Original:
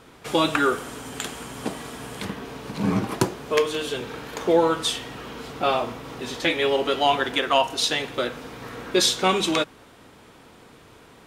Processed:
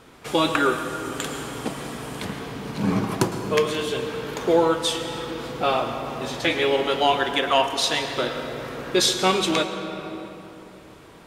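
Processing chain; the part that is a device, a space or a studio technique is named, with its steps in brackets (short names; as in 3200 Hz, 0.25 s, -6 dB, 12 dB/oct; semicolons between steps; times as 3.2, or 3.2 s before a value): compressed reverb return (on a send at -3.5 dB: reverb RT60 2.6 s, pre-delay 0.104 s + compressor, threshold -23 dBFS, peak gain reduction 10 dB)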